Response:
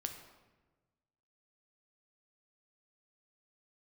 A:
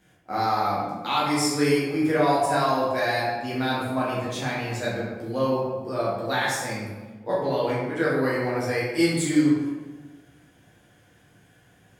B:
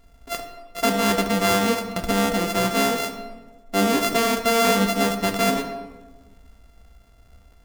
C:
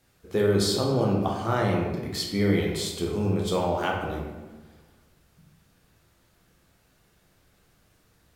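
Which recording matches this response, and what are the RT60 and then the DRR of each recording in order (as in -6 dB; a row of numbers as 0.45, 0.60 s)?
B; 1.3, 1.3, 1.3 s; -7.5, 5.0, -1.5 dB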